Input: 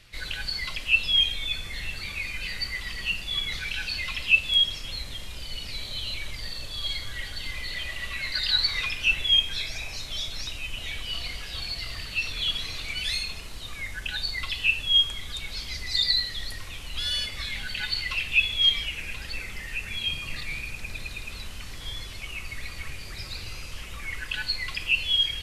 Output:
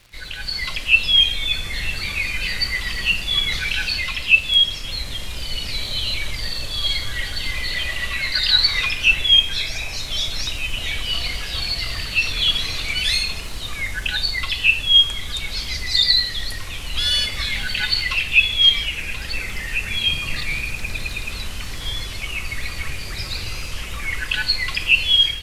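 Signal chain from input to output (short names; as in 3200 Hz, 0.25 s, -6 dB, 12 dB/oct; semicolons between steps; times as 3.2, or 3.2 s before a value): AGC gain up to 9 dB; crackle 100/s -36 dBFS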